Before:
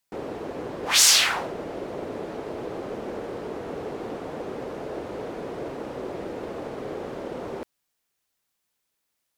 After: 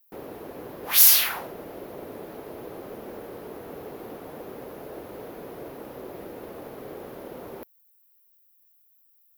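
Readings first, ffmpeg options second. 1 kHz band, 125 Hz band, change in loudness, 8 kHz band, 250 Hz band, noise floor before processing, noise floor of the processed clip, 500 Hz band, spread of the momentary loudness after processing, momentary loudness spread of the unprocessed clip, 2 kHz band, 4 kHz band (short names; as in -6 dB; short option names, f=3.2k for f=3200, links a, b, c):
-6.0 dB, -6.0 dB, +10.0 dB, -3.0 dB, -6.0 dB, -78 dBFS, -62 dBFS, -6.0 dB, 17 LU, 16 LU, -6.0 dB, -6.0 dB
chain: -af "aexciter=amount=15.5:drive=4.6:freq=11k,volume=-6dB"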